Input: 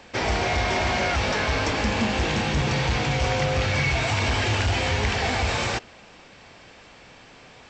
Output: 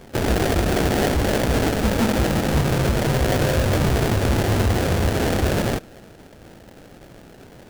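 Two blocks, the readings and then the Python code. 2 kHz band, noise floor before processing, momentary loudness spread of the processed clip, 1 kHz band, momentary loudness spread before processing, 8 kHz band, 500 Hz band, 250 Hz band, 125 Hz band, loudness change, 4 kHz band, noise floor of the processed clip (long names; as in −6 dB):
−3.0 dB, −49 dBFS, 1 LU, 0.0 dB, 2 LU, +3.5 dB, +5.5 dB, +7.5 dB, +5.0 dB, +3.0 dB, −2.0 dB, −45 dBFS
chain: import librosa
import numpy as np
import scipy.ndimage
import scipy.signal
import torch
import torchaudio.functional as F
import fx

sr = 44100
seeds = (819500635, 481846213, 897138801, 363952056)

y = fx.sample_hold(x, sr, seeds[0], rate_hz=1100.0, jitter_pct=20)
y = F.gain(torch.from_numpy(y), 4.0).numpy()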